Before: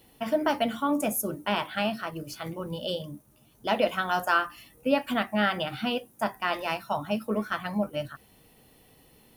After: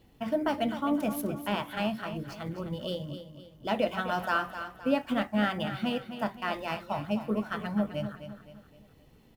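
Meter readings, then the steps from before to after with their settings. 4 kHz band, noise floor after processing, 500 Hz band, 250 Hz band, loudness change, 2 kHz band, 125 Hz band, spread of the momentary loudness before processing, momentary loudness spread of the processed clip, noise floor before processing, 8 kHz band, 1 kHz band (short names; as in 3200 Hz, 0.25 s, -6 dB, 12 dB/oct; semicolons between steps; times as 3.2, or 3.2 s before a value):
-5.0 dB, -59 dBFS, -3.0 dB, 0.0 dB, -2.5 dB, -4.5 dB, +1.5 dB, 10 LU, 9 LU, -60 dBFS, under -10 dB, -4.0 dB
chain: median filter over 5 samples; low shelf 240 Hz +9.5 dB; feedback echo 0.258 s, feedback 42%, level -10.5 dB; gain -5 dB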